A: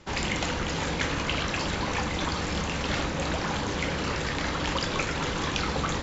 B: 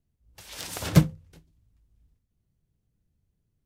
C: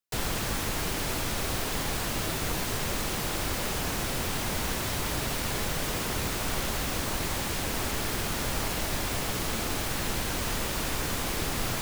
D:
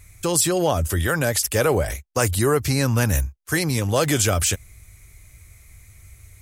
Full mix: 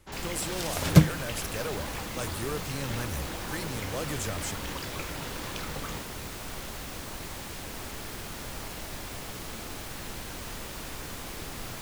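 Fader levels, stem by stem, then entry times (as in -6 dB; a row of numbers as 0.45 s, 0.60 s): -10.5 dB, +1.0 dB, -8.5 dB, -15.5 dB; 0.00 s, 0.00 s, 0.00 s, 0.00 s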